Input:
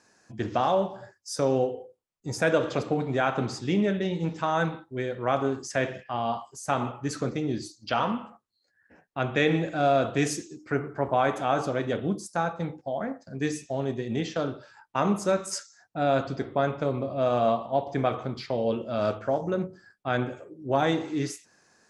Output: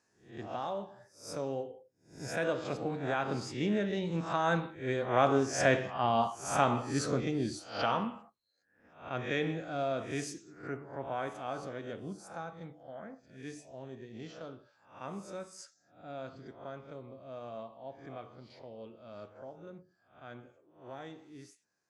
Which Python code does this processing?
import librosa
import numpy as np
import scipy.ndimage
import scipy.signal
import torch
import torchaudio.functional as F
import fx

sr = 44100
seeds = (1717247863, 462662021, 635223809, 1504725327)

y = fx.spec_swells(x, sr, rise_s=0.44)
y = fx.doppler_pass(y, sr, speed_mps=7, closest_m=7.7, pass_at_s=5.9)